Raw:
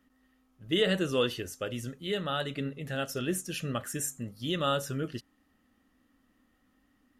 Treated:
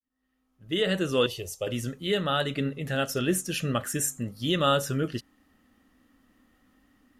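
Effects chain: opening faded in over 1.52 s; 1.26–1.67 fixed phaser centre 640 Hz, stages 4; gain +5.5 dB

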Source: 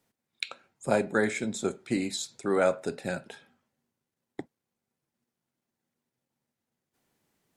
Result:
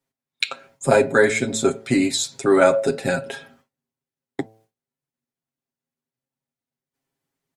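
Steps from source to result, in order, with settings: de-hum 110.3 Hz, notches 9; gate with hold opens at -58 dBFS; comb 7.4 ms, depth 78%; in parallel at -2 dB: compressor, threshold -39 dBFS, peak gain reduction 19.5 dB; on the sum: gain +7 dB

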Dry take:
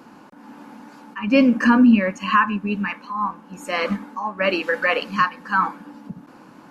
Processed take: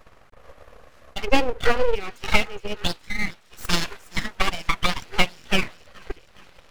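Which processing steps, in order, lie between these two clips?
2.77–4.23 tilt shelf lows -8 dB, about 660 Hz; on a send: thin delay 0.417 s, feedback 58%, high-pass 3100 Hz, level -7 dB; on the sum: transient shaper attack +12 dB, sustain -4 dB; full-wave rectifier; gain -6 dB

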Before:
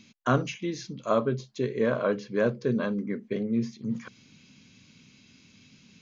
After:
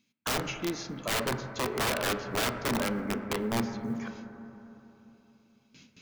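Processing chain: gate with hold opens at -44 dBFS; low shelf 88 Hz -10 dB; in parallel at +1.5 dB: compressor 6:1, threshold -39 dBFS, peak gain reduction 18.5 dB; on the sum: wrapped overs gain 20 dB; companded quantiser 8-bit; reverb RT60 3.4 s, pre-delay 6 ms, DRR 6.5 dB; gain -3.5 dB

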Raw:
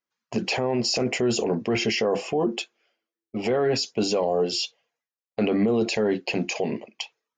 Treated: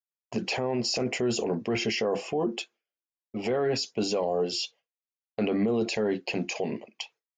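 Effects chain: gate with hold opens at -54 dBFS; gain -4 dB

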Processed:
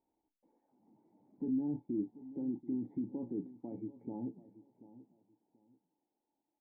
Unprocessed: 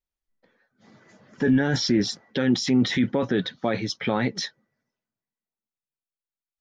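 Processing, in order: switching spikes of -22.5 dBFS; band shelf 1900 Hz -8 dB, from 4.03 s -16 dB; limiter -15.5 dBFS, peak gain reduction 4 dB; vocal tract filter u; air absorption 300 m; doubler 34 ms -11.5 dB; feedback echo 0.735 s, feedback 24%, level -16.5 dB; gain -6.5 dB

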